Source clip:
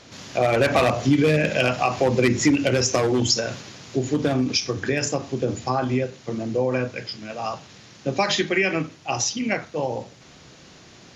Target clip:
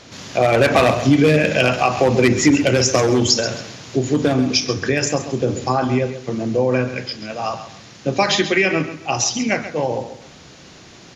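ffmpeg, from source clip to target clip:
-af "aecho=1:1:134|268|402:0.251|0.0728|0.0211,volume=1.68"

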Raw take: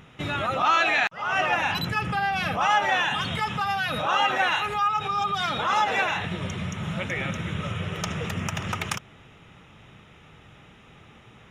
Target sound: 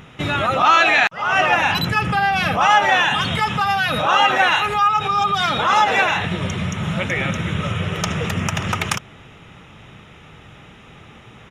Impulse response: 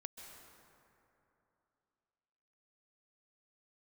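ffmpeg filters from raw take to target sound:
-af "aresample=32000,aresample=44100,volume=2.37"

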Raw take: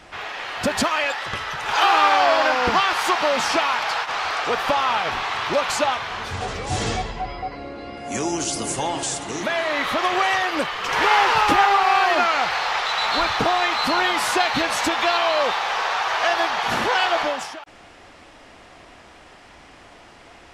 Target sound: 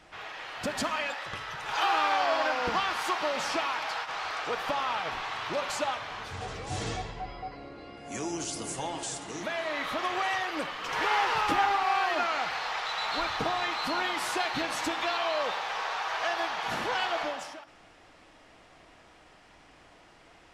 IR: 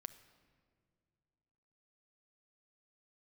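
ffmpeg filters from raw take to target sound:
-filter_complex "[1:a]atrim=start_sample=2205,afade=t=out:st=0.36:d=0.01,atrim=end_sample=16317[s0];[0:a][s0]afir=irnorm=-1:irlink=0,volume=0.562"

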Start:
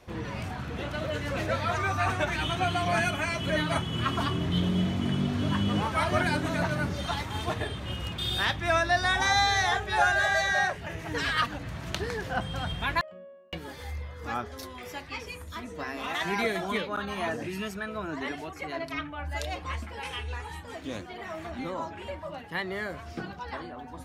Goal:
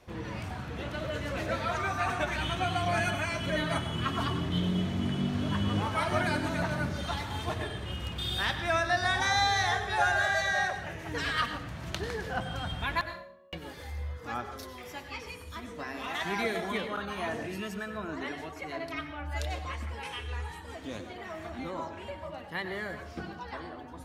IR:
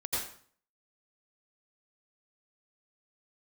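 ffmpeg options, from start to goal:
-filter_complex "[0:a]asplit=2[s0][s1];[1:a]atrim=start_sample=2205,asetrate=40572,aresample=44100[s2];[s1][s2]afir=irnorm=-1:irlink=0,volume=0.237[s3];[s0][s3]amix=inputs=2:normalize=0,volume=0.596"

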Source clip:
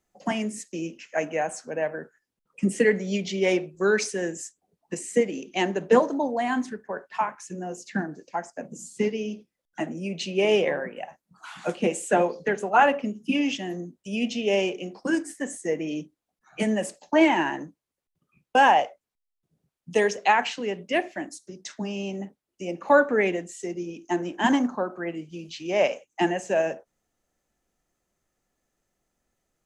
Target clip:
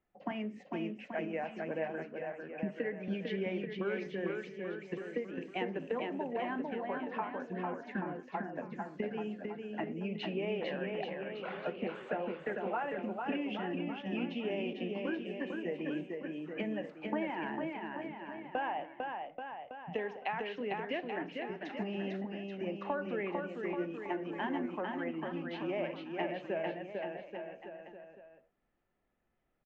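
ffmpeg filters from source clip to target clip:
-filter_complex "[0:a]lowpass=f=2900:w=0.5412,lowpass=f=2900:w=1.3066,acompressor=threshold=0.0316:ratio=6,asplit=2[s0][s1];[s1]aecho=0:1:450|832.5|1158|1434|1669:0.631|0.398|0.251|0.158|0.1[s2];[s0][s2]amix=inputs=2:normalize=0,volume=0.596"

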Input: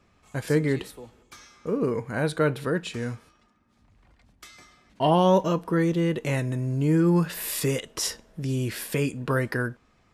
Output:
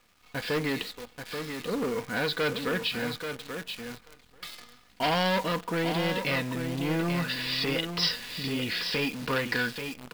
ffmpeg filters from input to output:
-af "lowpass=4300,aecho=1:1:4.1:0.46,aresample=11025,asoftclip=type=tanh:threshold=0.0794,aresample=44100,aecho=1:1:834|1668:0.422|0.0633,crystalizer=i=8.5:c=0,acrusher=bits=7:dc=4:mix=0:aa=0.000001,volume=0.668"

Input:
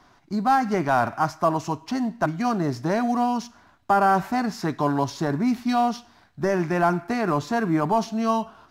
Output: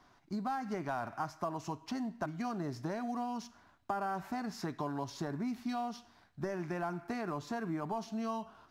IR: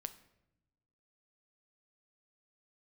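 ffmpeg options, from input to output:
-af "acompressor=threshold=0.0562:ratio=6,volume=0.376"

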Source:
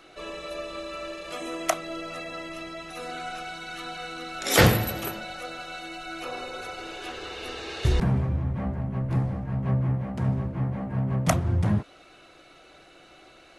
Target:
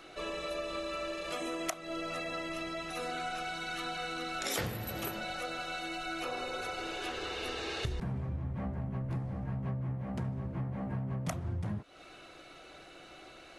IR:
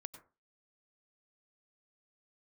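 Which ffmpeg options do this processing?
-af "acompressor=threshold=0.0224:ratio=8"

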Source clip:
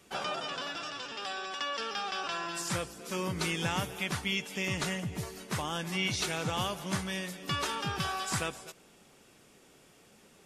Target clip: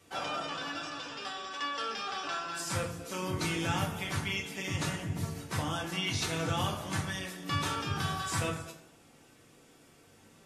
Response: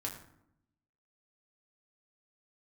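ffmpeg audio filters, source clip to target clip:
-filter_complex "[1:a]atrim=start_sample=2205,afade=t=out:st=0.32:d=0.01,atrim=end_sample=14553[s0];[0:a][s0]afir=irnorm=-1:irlink=0" -ar 44100 -c:a libmp3lame -b:a 64k

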